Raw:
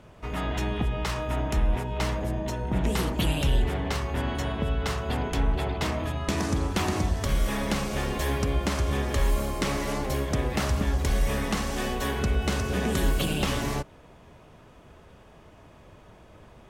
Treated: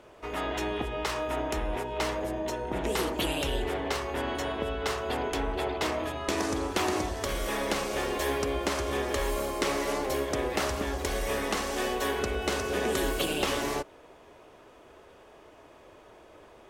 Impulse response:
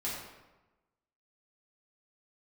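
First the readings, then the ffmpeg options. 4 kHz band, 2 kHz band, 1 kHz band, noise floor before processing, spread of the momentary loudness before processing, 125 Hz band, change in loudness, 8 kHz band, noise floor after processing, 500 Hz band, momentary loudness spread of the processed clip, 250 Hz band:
0.0 dB, 0.0 dB, +0.5 dB, −52 dBFS, 3 LU, −11.5 dB, −2.5 dB, 0.0 dB, −54 dBFS, +2.0 dB, 4 LU, −4.0 dB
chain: -af "lowshelf=frequency=250:width_type=q:width=1.5:gain=-10.5"

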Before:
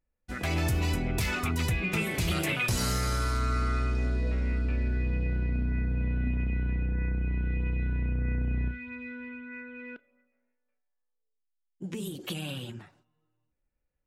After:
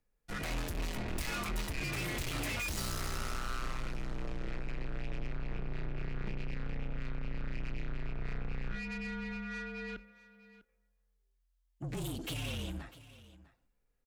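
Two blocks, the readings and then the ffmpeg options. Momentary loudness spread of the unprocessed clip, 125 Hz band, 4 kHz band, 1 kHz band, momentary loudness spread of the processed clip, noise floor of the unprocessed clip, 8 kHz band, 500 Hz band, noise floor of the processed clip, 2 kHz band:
13 LU, −11.5 dB, −5.0 dB, −6.5 dB, 7 LU, −79 dBFS, −5.5 dB, −6.5 dB, −76 dBFS, −6.5 dB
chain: -af "aeval=exprs='(tanh(100*val(0)+0.45)-tanh(0.45))/100':channel_layout=same,afreqshift=-43,aecho=1:1:649:0.126,volume=4.5dB"

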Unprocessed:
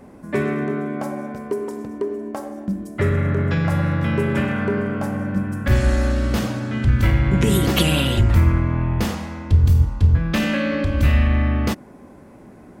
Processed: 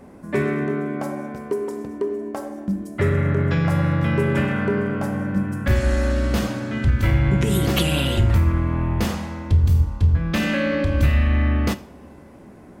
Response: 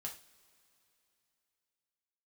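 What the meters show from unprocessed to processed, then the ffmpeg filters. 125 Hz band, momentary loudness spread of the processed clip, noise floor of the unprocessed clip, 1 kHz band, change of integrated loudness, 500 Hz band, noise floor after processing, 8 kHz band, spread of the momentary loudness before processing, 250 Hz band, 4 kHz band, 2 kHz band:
−1.0 dB, 9 LU, −44 dBFS, −1.0 dB, −1.0 dB, 0.0 dB, −44 dBFS, −2.0 dB, 11 LU, −1.0 dB, −2.0 dB, −0.5 dB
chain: -filter_complex "[0:a]alimiter=limit=-8dB:level=0:latency=1:release=460,asplit=2[link_01][link_02];[1:a]atrim=start_sample=2205,asetrate=31311,aresample=44100[link_03];[link_02][link_03]afir=irnorm=-1:irlink=0,volume=-8dB[link_04];[link_01][link_04]amix=inputs=2:normalize=0,volume=-2.5dB"

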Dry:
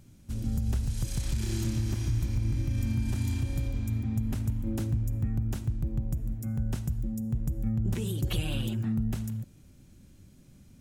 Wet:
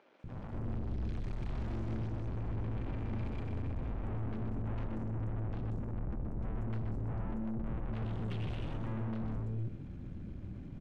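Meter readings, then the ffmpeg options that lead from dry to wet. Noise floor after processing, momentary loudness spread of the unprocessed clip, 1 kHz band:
−46 dBFS, 3 LU, +3.0 dB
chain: -filter_complex "[0:a]highshelf=frequency=7700:gain=-6.5,asplit=2[link_01][link_02];[link_02]acompressor=threshold=-36dB:ratio=6,volume=2.5dB[link_03];[link_01][link_03]amix=inputs=2:normalize=0,aeval=exprs='(tanh(141*val(0)+0.45)-tanh(0.45))/141':channel_layout=same,acrossover=split=490|5700[link_04][link_05][link_06];[link_06]adelay=190[link_07];[link_04]adelay=240[link_08];[link_08][link_05][link_07]amix=inputs=3:normalize=0,adynamicsmooth=sensitivity=6:basefreq=1900,asplit=2[link_09][link_10];[link_10]aecho=0:1:126:0.398[link_11];[link_09][link_11]amix=inputs=2:normalize=0,volume=6dB"

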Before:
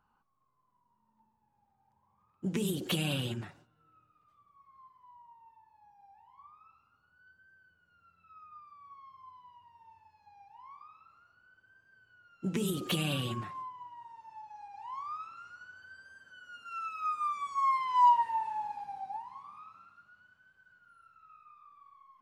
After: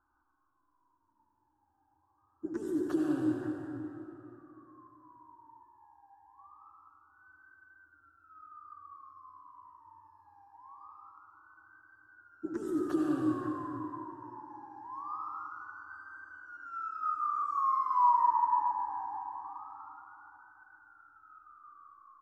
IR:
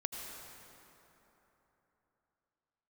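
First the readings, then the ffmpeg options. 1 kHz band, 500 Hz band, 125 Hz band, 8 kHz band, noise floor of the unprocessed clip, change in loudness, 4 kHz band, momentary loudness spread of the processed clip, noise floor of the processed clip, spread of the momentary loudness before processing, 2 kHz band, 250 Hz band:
+0.5 dB, +2.0 dB, −10.5 dB, below −15 dB, −75 dBFS, −0.5 dB, below −20 dB, 23 LU, −75 dBFS, 22 LU, −4.0 dB, +4.5 dB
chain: -filter_complex "[0:a]firequalizer=gain_entry='entry(100,0);entry(190,-26);entry(300,15);entry(440,-8);entry(630,-3);entry(1600,4);entry(2200,-26);entry(3200,-27);entry(5200,-9);entry(11000,-20)':delay=0.05:min_phase=1[link_01];[1:a]atrim=start_sample=2205,asetrate=48510,aresample=44100[link_02];[link_01][link_02]afir=irnorm=-1:irlink=0"

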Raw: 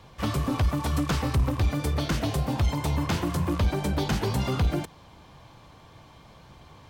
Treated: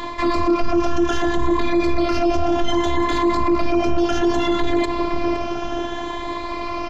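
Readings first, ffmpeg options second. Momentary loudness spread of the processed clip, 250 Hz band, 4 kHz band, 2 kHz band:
8 LU, +10.5 dB, +6.5 dB, +9.0 dB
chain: -filter_complex "[0:a]afftfilt=real='re*pow(10,9/40*sin(2*PI*(1*log(max(b,1)*sr/1024/100)/log(2)-(0.64)*(pts-256)/sr)))':imag='im*pow(10,9/40*sin(2*PI*(1*log(max(b,1)*sr/1024/100)/log(2)-(0.64)*(pts-256)/sr)))':win_size=1024:overlap=0.75,areverse,acompressor=threshold=-30dB:ratio=12,areverse,highpass=frequency=44:poles=1,lowshelf=frequency=140:gain=-2.5,bandreject=frequency=60:width_type=h:width=6,bandreject=frequency=120:width_type=h:width=6,bandreject=frequency=180:width_type=h:width=6,asplit=2[link_01][link_02];[link_02]adelay=514,lowpass=frequency=1100:poles=1,volume=-11dB,asplit=2[link_03][link_04];[link_04]adelay=514,lowpass=frequency=1100:poles=1,volume=0.51,asplit=2[link_05][link_06];[link_06]adelay=514,lowpass=frequency=1100:poles=1,volume=0.51,asplit=2[link_07][link_08];[link_08]adelay=514,lowpass=frequency=1100:poles=1,volume=0.51,asplit=2[link_09][link_10];[link_10]adelay=514,lowpass=frequency=1100:poles=1,volume=0.51[link_11];[link_01][link_03][link_05][link_07][link_09][link_11]amix=inputs=6:normalize=0,aresample=16000,aresample=44100,afftfilt=real='hypot(re,im)*cos(PI*b)':imag='0':win_size=512:overlap=0.75,asplit=2[link_12][link_13];[link_13]volume=31.5dB,asoftclip=hard,volume=-31.5dB,volume=-5dB[link_14];[link_12][link_14]amix=inputs=2:normalize=0,highshelf=frequency=2300:gain=-8.5,acontrast=90,alimiter=level_in=26dB:limit=-1dB:release=50:level=0:latency=1,volume=-7.5dB"

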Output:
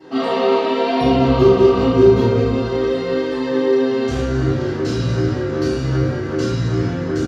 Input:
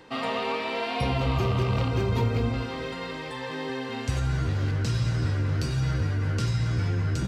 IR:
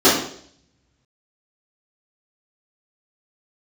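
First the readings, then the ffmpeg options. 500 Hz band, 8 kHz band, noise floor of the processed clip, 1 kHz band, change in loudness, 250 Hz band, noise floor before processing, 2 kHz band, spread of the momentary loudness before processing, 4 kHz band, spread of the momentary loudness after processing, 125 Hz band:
+17.5 dB, can't be measured, −23 dBFS, +9.0 dB, +10.5 dB, +14.5 dB, −35 dBFS, +5.0 dB, 8 LU, +6.0 dB, 8 LU, +4.0 dB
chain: -filter_complex "[0:a]asplit=2[link_01][link_02];[link_02]adelay=36,volume=-5dB[link_03];[link_01][link_03]amix=inputs=2:normalize=0[link_04];[1:a]atrim=start_sample=2205[link_05];[link_04][link_05]afir=irnorm=-1:irlink=0,volume=-18dB"

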